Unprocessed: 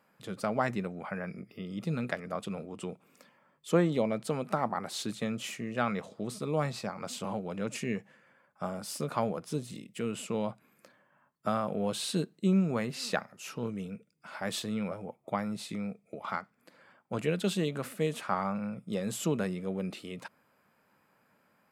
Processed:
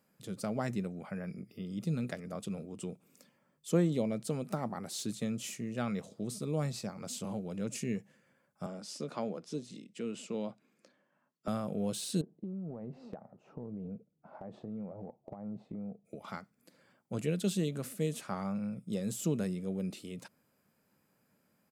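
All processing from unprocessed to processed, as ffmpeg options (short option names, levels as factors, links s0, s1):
-filter_complex "[0:a]asettb=1/sr,asplit=3[s0][s1][s2];[s0]atrim=end=8.664[s3];[s1]atrim=start=8.66:end=11.48,asetpts=PTS-STARTPTS,afade=t=in:d=0.004:c=qsin,afade=t=out:st=2.816:d=0.004:c=qsin,lowpass=11000,acrossover=split=180 6500:gain=0.0891 1 0.141[s4][s5][s6];[s4][s5][s6]amix=inputs=3:normalize=0[s7];[s2]atrim=start=11.476[s8];[s3][s7]acrossfade=d=0.004:c1=hsin:c2=qsin[s9];[s9][s8]acrossfade=d=0.004:c1=qsin:c2=hsin,asettb=1/sr,asplit=3[s10][s11][s12];[s10]atrim=end=12.214[s13];[s11]atrim=start=12.21:end=16.05,asetpts=PTS-STARTPTS,afade=t=in:d=0.004:c=qsin,afade=t=out:st=3.836:d=0.004:c=qsin,lowpass=f=790:t=q:w=2.4,acompressor=threshold=0.0178:ratio=16:attack=3.2:release=140:knee=1:detection=peak[s14];[s12]atrim=start=16.046[s15];[s13][s14]acrossfade=d=0.004:c1=hsin:c2=qsin[s16];[s16][s15]acrossfade=d=0.004:c1=qsin:c2=hsin,deesser=0.8,firequalizer=gain_entry='entry(160,0);entry(960,-11);entry(6000,2)':delay=0.05:min_phase=1"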